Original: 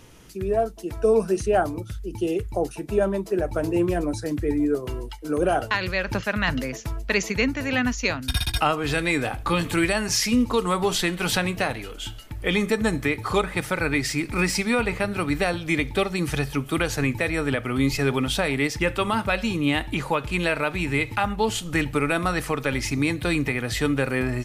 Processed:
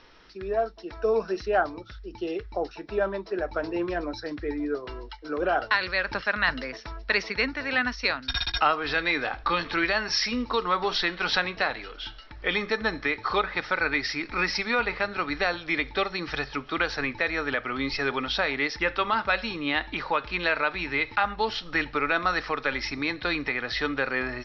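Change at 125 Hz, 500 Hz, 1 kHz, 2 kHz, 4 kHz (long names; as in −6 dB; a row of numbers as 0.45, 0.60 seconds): −14.0, −4.5, 0.0, +0.5, −0.5 decibels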